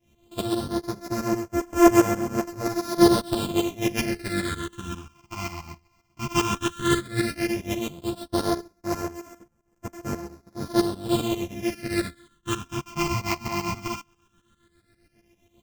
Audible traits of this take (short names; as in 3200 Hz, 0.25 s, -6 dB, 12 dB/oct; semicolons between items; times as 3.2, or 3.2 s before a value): a buzz of ramps at a fixed pitch in blocks of 128 samples; phasing stages 8, 0.13 Hz, lowest notch 480–3800 Hz; tremolo saw up 7.5 Hz, depth 85%; a shimmering, thickened sound